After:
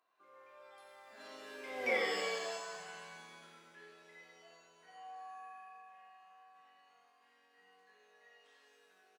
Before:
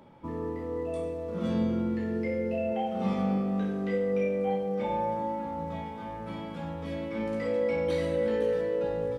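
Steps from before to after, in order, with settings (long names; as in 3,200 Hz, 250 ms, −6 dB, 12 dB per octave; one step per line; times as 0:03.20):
source passing by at 0:01.93, 58 m/s, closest 5.7 metres
high-pass filter 990 Hz 12 dB per octave
on a send: single-tap delay 89 ms −6.5 dB
on the sum: reverb with rising layers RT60 1.2 s, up +7 semitones, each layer −2 dB, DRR 3.5 dB
level +7.5 dB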